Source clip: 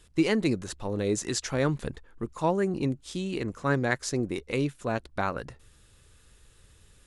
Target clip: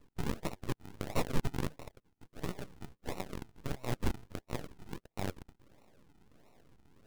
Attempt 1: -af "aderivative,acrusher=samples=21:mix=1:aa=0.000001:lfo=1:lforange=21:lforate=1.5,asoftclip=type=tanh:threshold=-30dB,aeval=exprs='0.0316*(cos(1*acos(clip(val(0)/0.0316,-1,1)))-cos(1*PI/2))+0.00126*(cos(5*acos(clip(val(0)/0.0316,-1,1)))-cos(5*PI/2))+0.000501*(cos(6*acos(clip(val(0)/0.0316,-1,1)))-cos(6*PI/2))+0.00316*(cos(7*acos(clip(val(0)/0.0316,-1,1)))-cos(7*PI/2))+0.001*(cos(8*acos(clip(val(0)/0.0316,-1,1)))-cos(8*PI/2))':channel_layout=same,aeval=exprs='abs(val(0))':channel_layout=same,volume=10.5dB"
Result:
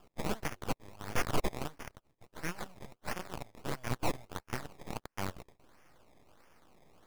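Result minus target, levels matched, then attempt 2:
sample-and-hold swept by an LFO: distortion −16 dB
-af "aderivative,acrusher=samples=54:mix=1:aa=0.000001:lfo=1:lforange=54:lforate=1.5,asoftclip=type=tanh:threshold=-30dB,aeval=exprs='0.0316*(cos(1*acos(clip(val(0)/0.0316,-1,1)))-cos(1*PI/2))+0.00126*(cos(5*acos(clip(val(0)/0.0316,-1,1)))-cos(5*PI/2))+0.000501*(cos(6*acos(clip(val(0)/0.0316,-1,1)))-cos(6*PI/2))+0.00316*(cos(7*acos(clip(val(0)/0.0316,-1,1)))-cos(7*PI/2))+0.001*(cos(8*acos(clip(val(0)/0.0316,-1,1)))-cos(8*PI/2))':channel_layout=same,aeval=exprs='abs(val(0))':channel_layout=same,volume=10.5dB"

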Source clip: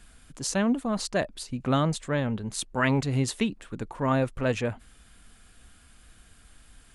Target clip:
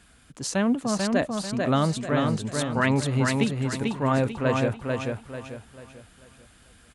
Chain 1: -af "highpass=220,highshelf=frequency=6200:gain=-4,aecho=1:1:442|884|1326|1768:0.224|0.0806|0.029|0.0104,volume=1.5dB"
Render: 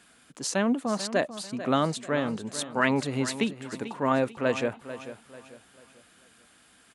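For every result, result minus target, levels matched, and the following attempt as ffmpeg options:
125 Hz band −7.0 dB; echo-to-direct −9.5 dB
-af "highpass=64,highshelf=frequency=6200:gain=-4,aecho=1:1:442|884|1326|1768:0.224|0.0806|0.029|0.0104,volume=1.5dB"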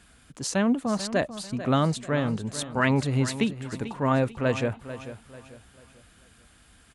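echo-to-direct −9.5 dB
-af "highpass=64,highshelf=frequency=6200:gain=-4,aecho=1:1:442|884|1326|1768|2210:0.668|0.241|0.0866|0.0312|0.0112,volume=1.5dB"

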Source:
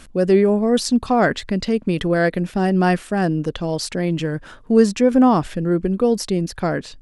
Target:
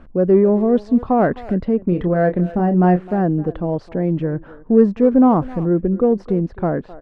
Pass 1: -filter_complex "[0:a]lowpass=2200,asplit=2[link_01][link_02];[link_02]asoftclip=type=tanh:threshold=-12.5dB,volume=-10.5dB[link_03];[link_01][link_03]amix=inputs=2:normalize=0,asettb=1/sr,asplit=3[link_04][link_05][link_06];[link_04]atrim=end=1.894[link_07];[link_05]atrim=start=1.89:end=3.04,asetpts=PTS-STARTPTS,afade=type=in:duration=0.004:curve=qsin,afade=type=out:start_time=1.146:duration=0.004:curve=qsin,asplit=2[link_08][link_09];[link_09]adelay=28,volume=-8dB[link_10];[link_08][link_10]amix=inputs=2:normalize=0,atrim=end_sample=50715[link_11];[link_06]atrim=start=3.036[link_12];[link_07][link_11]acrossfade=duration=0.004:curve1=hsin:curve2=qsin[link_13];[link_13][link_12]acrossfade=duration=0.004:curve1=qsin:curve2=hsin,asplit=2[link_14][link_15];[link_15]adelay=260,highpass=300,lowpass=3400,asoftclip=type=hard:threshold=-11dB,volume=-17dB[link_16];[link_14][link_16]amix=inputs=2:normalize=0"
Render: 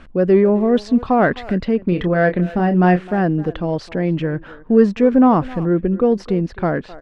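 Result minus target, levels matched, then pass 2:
2,000 Hz band +7.5 dB
-filter_complex "[0:a]lowpass=990,asplit=2[link_01][link_02];[link_02]asoftclip=type=tanh:threshold=-12.5dB,volume=-10.5dB[link_03];[link_01][link_03]amix=inputs=2:normalize=0,asettb=1/sr,asplit=3[link_04][link_05][link_06];[link_04]atrim=end=1.894[link_07];[link_05]atrim=start=1.89:end=3.04,asetpts=PTS-STARTPTS,afade=type=in:duration=0.004:curve=qsin,afade=type=out:start_time=1.146:duration=0.004:curve=qsin,asplit=2[link_08][link_09];[link_09]adelay=28,volume=-8dB[link_10];[link_08][link_10]amix=inputs=2:normalize=0,atrim=end_sample=50715[link_11];[link_06]atrim=start=3.036[link_12];[link_07][link_11]acrossfade=duration=0.004:curve1=hsin:curve2=qsin[link_13];[link_13][link_12]acrossfade=duration=0.004:curve1=qsin:curve2=hsin,asplit=2[link_14][link_15];[link_15]adelay=260,highpass=300,lowpass=3400,asoftclip=type=hard:threshold=-11dB,volume=-17dB[link_16];[link_14][link_16]amix=inputs=2:normalize=0"

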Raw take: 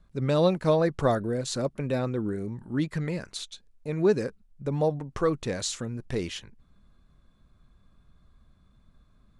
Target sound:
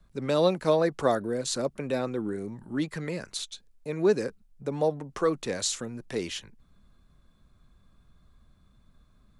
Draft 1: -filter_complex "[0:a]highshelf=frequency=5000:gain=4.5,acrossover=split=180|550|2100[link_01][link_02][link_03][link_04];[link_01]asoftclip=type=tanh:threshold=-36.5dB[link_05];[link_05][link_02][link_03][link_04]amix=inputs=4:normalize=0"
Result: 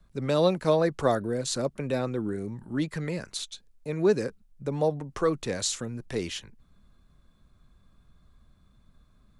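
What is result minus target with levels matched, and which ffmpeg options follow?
soft clipping: distortion −6 dB
-filter_complex "[0:a]highshelf=frequency=5000:gain=4.5,acrossover=split=180|550|2100[link_01][link_02][link_03][link_04];[link_01]asoftclip=type=tanh:threshold=-47dB[link_05];[link_05][link_02][link_03][link_04]amix=inputs=4:normalize=0"

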